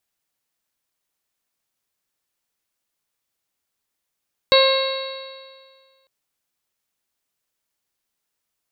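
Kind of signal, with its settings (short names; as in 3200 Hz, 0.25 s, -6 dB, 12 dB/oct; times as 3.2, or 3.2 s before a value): stretched partials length 1.55 s, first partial 533 Hz, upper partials -7/-14/-10.5/-12/-20/-3/-7 dB, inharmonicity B 0.0012, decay 1.78 s, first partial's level -12 dB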